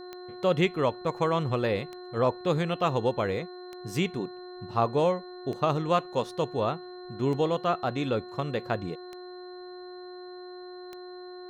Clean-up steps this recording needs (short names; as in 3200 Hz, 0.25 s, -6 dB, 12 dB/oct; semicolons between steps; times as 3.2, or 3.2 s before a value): de-click; de-hum 361.7 Hz, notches 5; notch 4100 Hz, Q 30